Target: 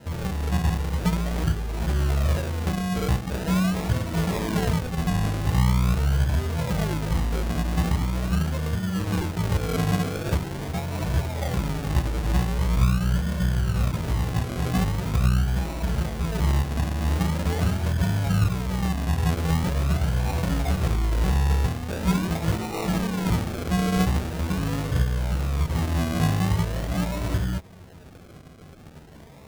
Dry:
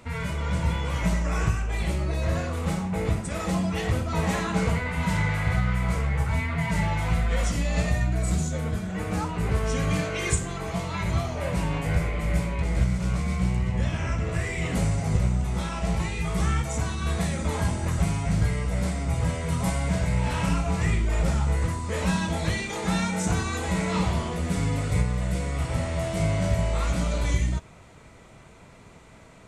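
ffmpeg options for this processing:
-filter_complex "[0:a]highpass=f=87:p=1,lowshelf=f=240:g=8,asplit=2[a][b];[b]acompressor=threshold=-33dB:ratio=6,volume=-2.5dB[c];[a][c]amix=inputs=2:normalize=0,flanger=delay=10:depth=8.3:regen=23:speed=0.11:shape=triangular,acrusher=samples=38:mix=1:aa=0.000001:lfo=1:lforange=22.8:lforate=0.43"

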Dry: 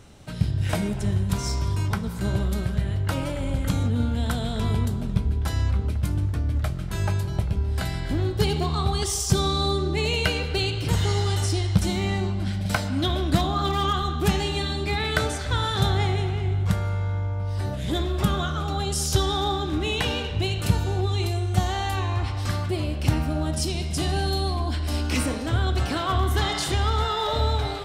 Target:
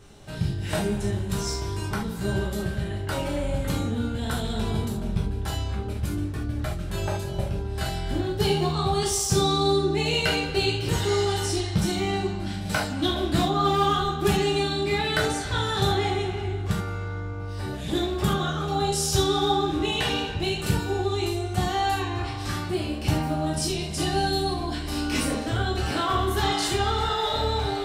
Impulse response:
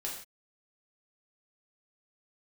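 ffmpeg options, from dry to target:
-filter_complex "[0:a]asettb=1/sr,asplit=3[a][b][c];[a]atrim=end=6.854[d];[b]atrim=start=6.85:end=7.64,asetpts=PTS-STARTPTS,afade=t=in:d=0.004:c=qsin,afade=t=out:st=0.786:d=0.004:c=qsin,equalizer=f=560:w=7.1:g=10[e];[c]atrim=start=7.636[f];[d][e]acrossfade=d=0.004:c1=hsin:c2=qsin[g];[g][f]acrossfade=d=0.004:c1=qsin:c2=hsin[h];[1:a]atrim=start_sample=2205,atrim=end_sample=3969[i];[h][i]afir=irnorm=-1:irlink=0"

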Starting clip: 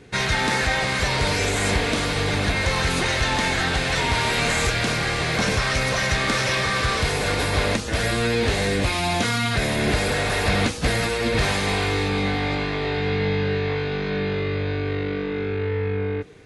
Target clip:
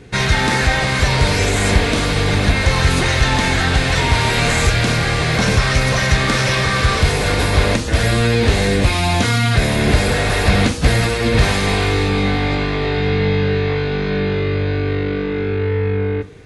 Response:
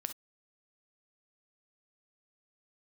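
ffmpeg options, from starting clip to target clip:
-filter_complex "[0:a]asplit=2[a][b];[1:a]atrim=start_sample=2205,lowshelf=f=210:g=10.5[c];[b][c]afir=irnorm=-1:irlink=0,volume=1dB[d];[a][d]amix=inputs=2:normalize=0,volume=-1.5dB"

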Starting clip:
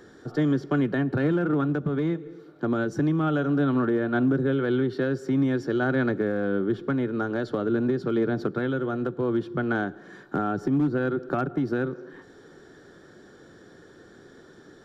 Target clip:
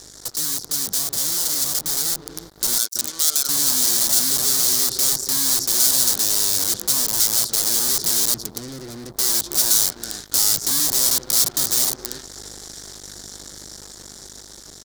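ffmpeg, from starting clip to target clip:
-filter_complex "[0:a]aeval=exprs='val(0)+0.00398*(sin(2*PI*50*n/s)+sin(2*PI*2*50*n/s)/2+sin(2*PI*3*50*n/s)/3+sin(2*PI*4*50*n/s)/4+sin(2*PI*5*50*n/s)/5)':c=same,asettb=1/sr,asplit=3[a][b][c];[a]atrim=end=2.784[d];[b]atrim=start=2.78:end=3.49,asetpts=PTS-STARTPTS,afade=t=in:d=0.004:c=qsin,afade=t=out:st=0.706:d=0.004:c=qsin,highpass=930[e];[c]atrim=start=3.486[f];[d][e]acrossfade=d=0.004:c1=hsin:c2=qsin[g];[g][f]acrossfade=d=0.004:c1=qsin:c2=hsin,aecho=1:1:324:0.141,asoftclip=type=hard:threshold=-26dB,acompressor=threshold=-42dB:ratio=2,asettb=1/sr,asplit=3[h][i][j];[h]atrim=end=8.344[k];[i]atrim=start=8.34:end=9.17,asetpts=PTS-STARTPTS,afade=t=in:d=0.004:c=qsin,afade=t=out:st=0.826:d=0.004:c=qsin,equalizer=f=1.6k:w=0.51:g=-15[l];[j]atrim=start=9.166[m];[k][l]acrossfade=d=0.004:c1=hsin:c2=qsin[n];[n][m]acrossfade=d=0.004:c1=qsin:c2=hsin,aeval=exprs='(mod(50.1*val(0)+1,2)-1)/50.1':c=same,acrusher=bits=6:mix=0:aa=0.5,aexciter=amount=11.1:drive=7.7:freq=4k,dynaudnorm=f=850:g=5:m=11.5dB,volume=-1dB"

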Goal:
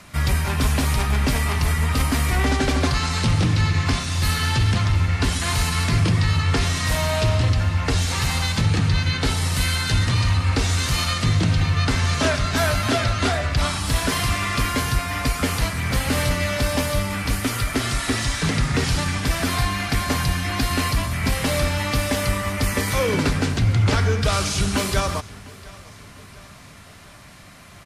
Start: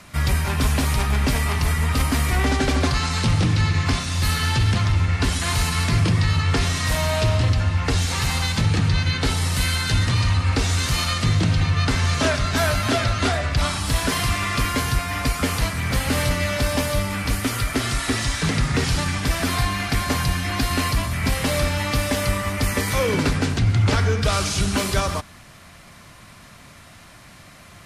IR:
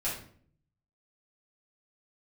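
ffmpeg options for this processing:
-af "aecho=1:1:702|1404|2106|2808:0.075|0.0435|0.0252|0.0146"

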